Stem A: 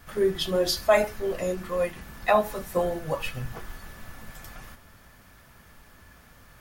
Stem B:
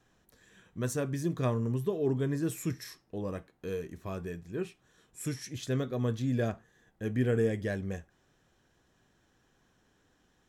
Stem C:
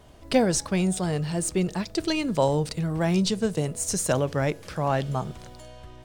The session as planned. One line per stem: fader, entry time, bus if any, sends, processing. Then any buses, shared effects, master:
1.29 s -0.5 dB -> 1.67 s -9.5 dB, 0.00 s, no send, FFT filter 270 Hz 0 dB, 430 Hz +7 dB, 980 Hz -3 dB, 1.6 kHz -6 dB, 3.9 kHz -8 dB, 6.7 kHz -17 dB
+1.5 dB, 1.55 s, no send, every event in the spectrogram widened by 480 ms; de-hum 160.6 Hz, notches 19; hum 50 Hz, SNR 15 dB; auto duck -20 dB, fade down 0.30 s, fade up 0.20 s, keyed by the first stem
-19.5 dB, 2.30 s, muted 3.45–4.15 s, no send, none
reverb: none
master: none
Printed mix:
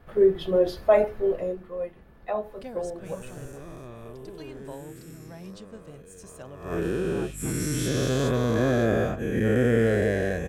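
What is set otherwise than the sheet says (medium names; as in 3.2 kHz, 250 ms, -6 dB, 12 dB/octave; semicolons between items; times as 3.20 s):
stem B: entry 1.55 s -> 2.40 s; master: extra peaking EQ 5.2 kHz -4.5 dB 1.1 oct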